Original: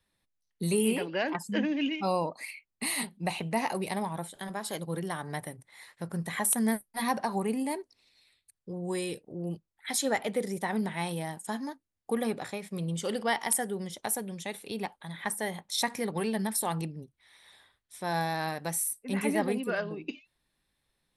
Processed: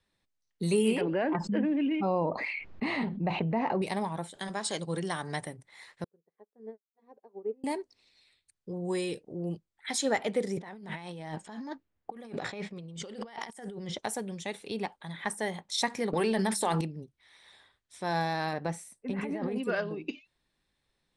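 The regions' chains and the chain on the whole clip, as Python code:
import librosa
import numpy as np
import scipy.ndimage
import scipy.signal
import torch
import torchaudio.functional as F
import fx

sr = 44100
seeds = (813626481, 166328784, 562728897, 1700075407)

y = fx.chain(x, sr, fx.spacing_loss(db_at_10k=45),
    fx.env_flatten(amount_pct=70), at=(1.01, 3.82))
y = fx.chain(y, sr, fx.brickwall_lowpass(high_hz=9800.0),
    fx.high_shelf(hz=3000.0, db=8.5), at=(4.4, 5.46))
y = fx.chain(y, sr, fx.bandpass_q(hz=430.0, q=4.3),
    fx.upward_expand(threshold_db=-55.0, expansion=2.5), at=(6.04, 7.64))
y = fx.chain(y, sr, fx.env_lowpass(base_hz=1900.0, full_db=-25.5),
    fx.over_compress(threshold_db=-42.0, ratio=-1.0), at=(10.57, 13.99))
y = fx.chain(y, sr, fx.peak_eq(hz=120.0, db=-10.0, octaves=1.1),
    fx.hum_notches(base_hz=50, count=8),
    fx.env_flatten(amount_pct=100), at=(16.13, 16.81))
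y = fx.chain(y, sr, fx.lowpass(hz=1600.0, slope=6),
    fx.over_compress(threshold_db=-33.0, ratio=-1.0), at=(18.53, 19.56))
y = scipy.signal.sosfilt(scipy.signal.butter(4, 8500.0, 'lowpass', fs=sr, output='sos'), y)
y = fx.peak_eq(y, sr, hz=400.0, db=2.0, octaves=0.77)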